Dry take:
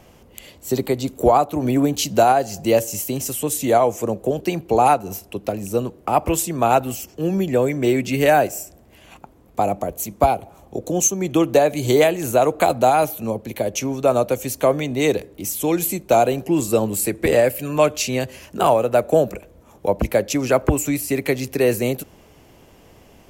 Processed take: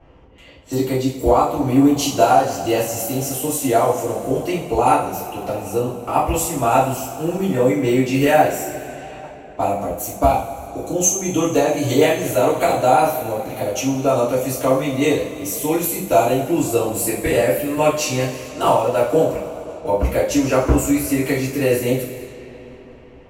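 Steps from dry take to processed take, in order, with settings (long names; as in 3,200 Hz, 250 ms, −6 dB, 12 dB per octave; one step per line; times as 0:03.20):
coupled-rooms reverb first 0.42 s, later 4.2 s, from −19 dB, DRR −9.5 dB
low-pass that shuts in the quiet parts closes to 1,800 Hz, open at −15.5 dBFS
level −8.5 dB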